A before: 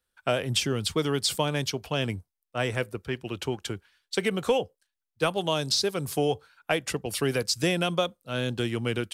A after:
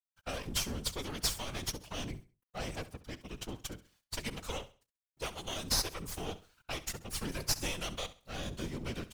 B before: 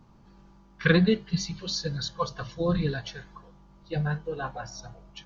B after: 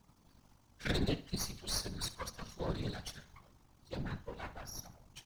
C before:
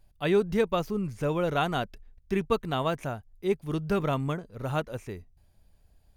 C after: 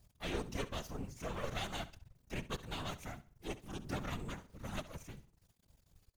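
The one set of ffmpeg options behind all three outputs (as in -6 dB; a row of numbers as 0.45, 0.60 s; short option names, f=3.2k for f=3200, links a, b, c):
-filter_complex "[0:a]equalizer=f=160:t=o:w=0.67:g=-5,equalizer=f=400:t=o:w=0.67:g=-8,equalizer=f=1.6k:t=o:w=0.67:g=-4,equalizer=f=6.3k:t=o:w=0.67:g=8,acrossover=split=330|2000[a][b][c];[b]alimiter=level_in=1.5dB:limit=-24dB:level=0:latency=1:release=88,volume=-1.5dB[d];[a][d][c]amix=inputs=3:normalize=0,aeval=exprs='max(val(0),0)':c=same,acrusher=bits=10:mix=0:aa=0.000001,afftfilt=real='hypot(re,im)*cos(2*PI*random(0))':imag='hypot(re,im)*sin(2*PI*random(1))':win_size=512:overlap=0.75,aecho=1:1:67|134|201:0.158|0.0475|0.0143,volume=1.5dB"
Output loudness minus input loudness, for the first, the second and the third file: -9.5, -12.0, -14.0 LU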